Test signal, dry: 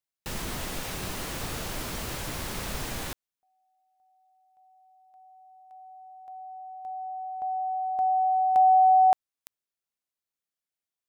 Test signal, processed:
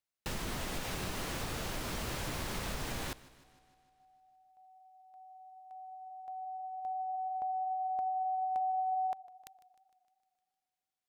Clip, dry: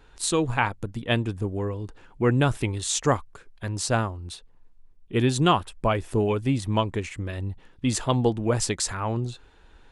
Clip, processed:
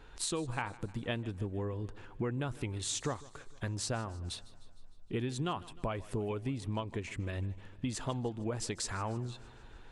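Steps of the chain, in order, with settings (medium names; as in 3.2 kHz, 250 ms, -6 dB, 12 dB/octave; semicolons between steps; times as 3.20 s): treble shelf 7.7 kHz -5.5 dB; compression 5:1, threshold -34 dBFS; modulated delay 153 ms, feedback 61%, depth 55 cents, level -20 dB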